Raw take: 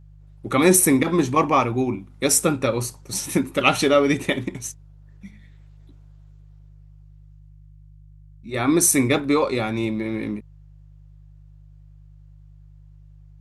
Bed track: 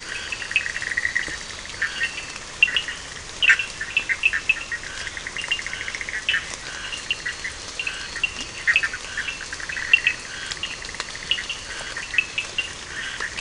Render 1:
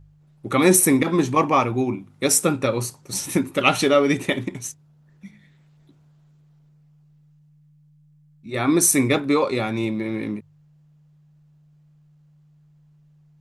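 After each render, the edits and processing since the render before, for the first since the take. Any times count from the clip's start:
hum removal 50 Hz, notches 2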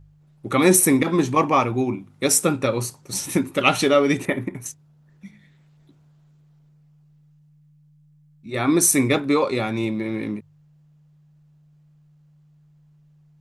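0:04.25–0:04.66: flat-topped bell 4,700 Hz −13 dB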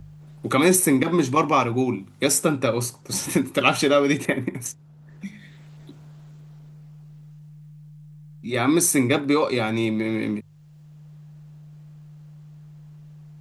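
multiband upward and downward compressor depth 40%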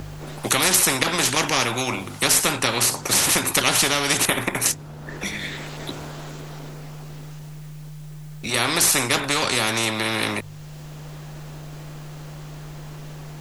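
every bin compressed towards the loudest bin 4 to 1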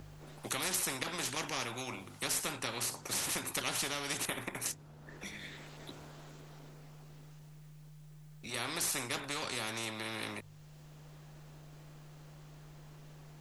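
level −16.5 dB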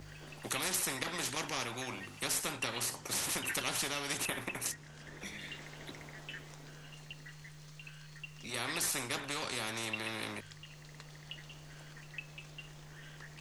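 mix in bed track −25 dB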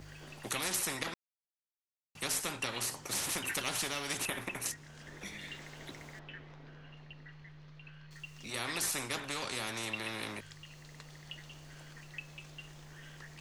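0:01.14–0:02.15: silence
0:02.85–0:04.21: floating-point word with a short mantissa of 4 bits
0:06.19–0:08.11: high-frequency loss of the air 280 metres

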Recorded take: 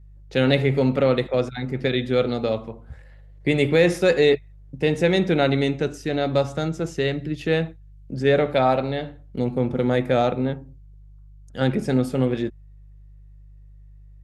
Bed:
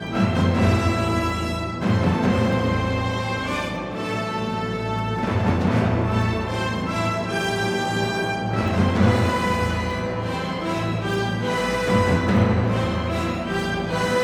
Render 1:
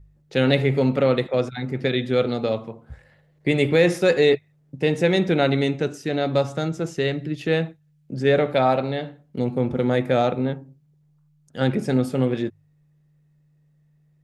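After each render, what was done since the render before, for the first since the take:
hum removal 50 Hz, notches 2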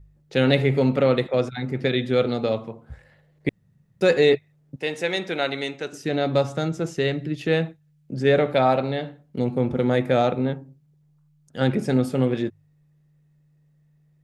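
0:03.49–0:04.01: fill with room tone
0:04.76–0:05.93: high-pass filter 880 Hz 6 dB per octave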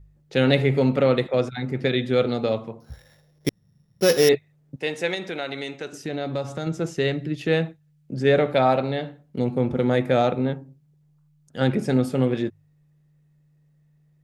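0:02.80–0:04.29: samples sorted by size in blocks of 8 samples
0:05.14–0:06.67: downward compressor 2 to 1, threshold −28 dBFS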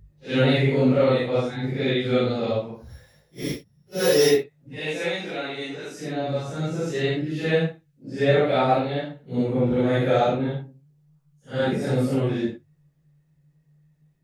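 random phases in long frames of 200 ms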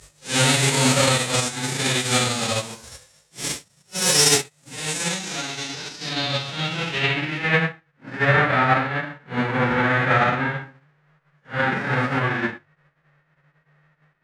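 spectral envelope flattened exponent 0.3
low-pass filter sweep 8,100 Hz → 1,700 Hz, 0:04.98–0:07.91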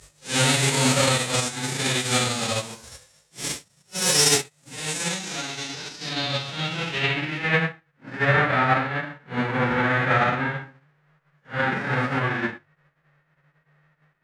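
level −2 dB

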